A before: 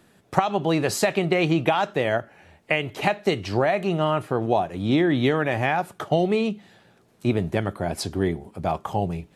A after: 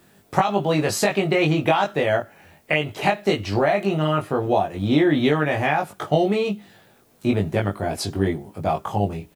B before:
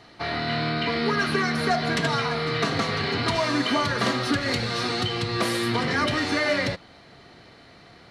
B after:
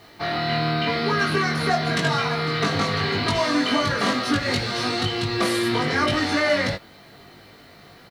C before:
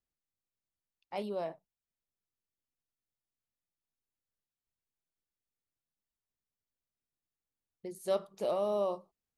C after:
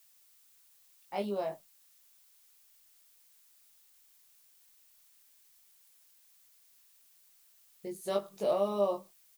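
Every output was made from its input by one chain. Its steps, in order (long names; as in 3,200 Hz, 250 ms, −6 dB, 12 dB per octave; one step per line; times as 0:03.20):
double-tracking delay 20 ms −2 dB
background noise blue −64 dBFS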